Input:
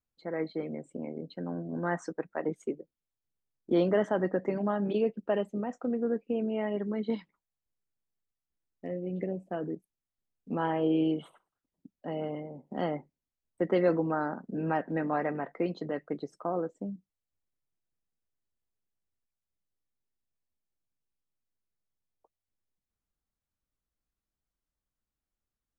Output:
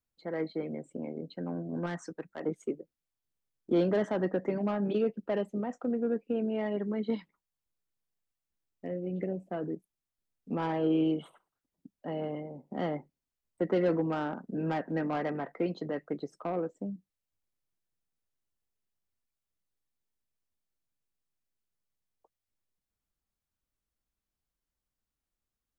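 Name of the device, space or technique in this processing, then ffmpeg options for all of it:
one-band saturation: -filter_complex "[0:a]acrossover=split=440|4600[a][b][c];[b]asoftclip=type=tanh:threshold=-29dB[d];[a][d][c]amix=inputs=3:normalize=0,asettb=1/sr,asplit=3[e][f][g];[e]atrim=end=1.864[h];[f]atrim=start=1.86:end=2.41,asetpts=PTS-STARTPTS,afade=t=in:d=0.004:c=qsin,afade=t=out:st=0.546:d=0.004:c=qsin,equalizer=f=680:w=0.45:g=-6.5[i];[g]atrim=start=2.406[j];[h][i]acrossfade=d=0.004:c1=hsin:c2=qsin[k];[k][j]acrossfade=d=0.004:c1=qsin:c2=hsin"

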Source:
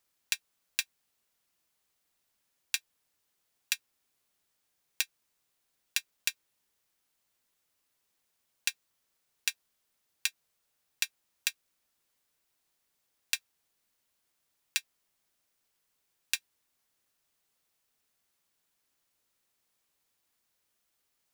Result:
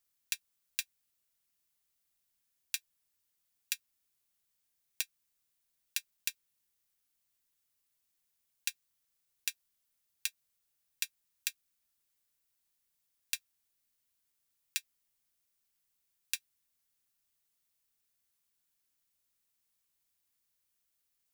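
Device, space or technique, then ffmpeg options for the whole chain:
smiley-face EQ: -af "lowshelf=f=100:g=5,equalizer=f=580:t=o:w=2.4:g=-5.5,highshelf=f=8k:g=7,volume=-6.5dB"

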